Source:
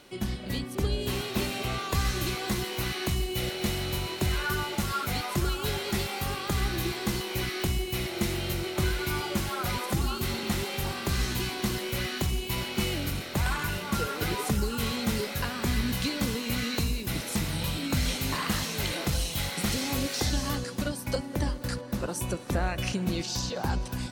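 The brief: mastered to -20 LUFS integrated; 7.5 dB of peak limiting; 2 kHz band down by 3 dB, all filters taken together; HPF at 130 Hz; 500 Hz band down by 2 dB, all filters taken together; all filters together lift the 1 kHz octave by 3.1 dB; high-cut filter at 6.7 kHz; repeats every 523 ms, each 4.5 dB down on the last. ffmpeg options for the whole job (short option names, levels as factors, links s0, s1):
-af "highpass=130,lowpass=6700,equalizer=f=500:t=o:g=-4,equalizer=f=1000:t=o:g=7,equalizer=f=2000:t=o:g=-6.5,alimiter=limit=0.0668:level=0:latency=1,aecho=1:1:523|1046|1569|2092|2615|3138|3661|4184|4707:0.596|0.357|0.214|0.129|0.0772|0.0463|0.0278|0.0167|0.01,volume=3.76"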